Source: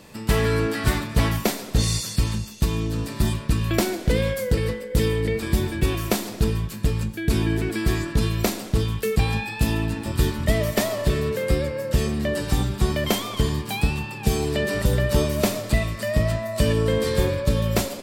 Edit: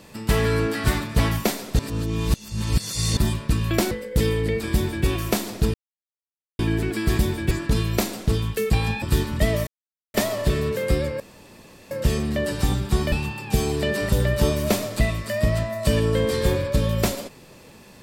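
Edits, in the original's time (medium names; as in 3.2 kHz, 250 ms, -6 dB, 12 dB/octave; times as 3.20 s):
1.79–3.17 s: reverse
3.91–4.70 s: delete
5.52–5.85 s: copy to 7.97 s
6.53–7.38 s: mute
9.48–10.09 s: delete
10.74 s: insert silence 0.47 s
11.80 s: insert room tone 0.71 s
13.01–13.85 s: delete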